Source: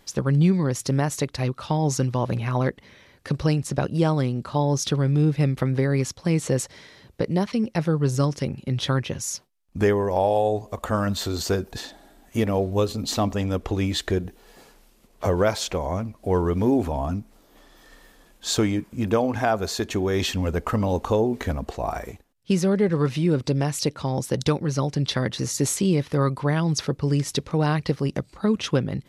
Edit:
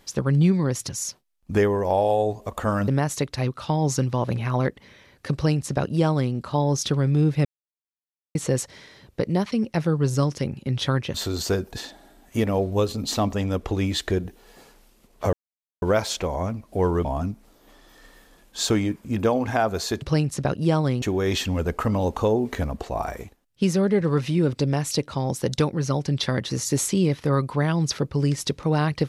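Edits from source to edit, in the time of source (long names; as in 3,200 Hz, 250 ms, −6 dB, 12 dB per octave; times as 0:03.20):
0:03.35–0:04.35: duplicate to 0:19.90
0:05.46–0:06.36: silence
0:09.15–0:11.14: move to 0:00.89
0:15.33: splice in silence 0.49 s
0:16.56–0:16.93: remove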